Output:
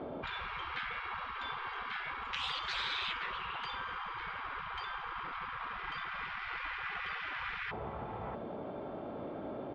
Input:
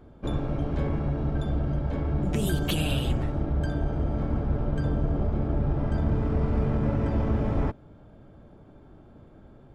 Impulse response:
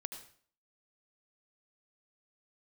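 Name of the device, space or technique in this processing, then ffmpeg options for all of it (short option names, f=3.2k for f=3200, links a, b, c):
overdrive pedal into a guitar cabinet: -filter_complex "[0:a]asplit=2[a][b];[b]highpass=f=720:p=1,volume=19dB,asoftclip=type=tanh:threshold=-12.5dB[c];[a][c]amix=inputs=2:normalize=0,lowpass=f=1.8k:p=1,volume=-6dB,highpass=79,equalizer=f=86:t=q:w=4:g=-6,equalizer=f=140:t=q:w=4:g=-4,equalizer=f=290:t=q:w=4:g=7,equalizer=f=600:t=q:w=4:g=6,equalizer=f=1.6k:t=q:w=4:g=-6,lowpass=f=4.2k:w=0.5412,lowpass=f=4.2k:w=1.3066,asettb=1/sr,asplit=3[d][e][f];[d]atrim=end=1.594[g];[e]atrim=start=1.59:end=2.1,asetpts=PTS-STARTPTS,afade=t=in:d=0.004:c=qsin,afade=t=out:st=0.506:d=0.004:c=qsin,asplit=2[h][i];[i]adelay=27,volume=-3.5dB[j];[h][j]amix=inputs=2:normalize=0,atrim=end_sample=22491[k];[f]atrim=start=2.096[l];[g][k]acrossfade=d=0.004:c1=hsin:c2=qsin[m];[m][l]acrossfade=d=0.004:c1=qsin:c2=hsin,asplit=2[n][o];[o]adelay=641.4,volume=-16dB,highshelf=f=4k:g=-14.4[p];[n][p]amix=inputs=2:normalize=0,afftfilt=real='re*lt(hypot(re,im),0.0501)':imag='im*lt(hypot(re,im),0.0501)':win_size=1024:overlap=0.75,volume=3.5dB"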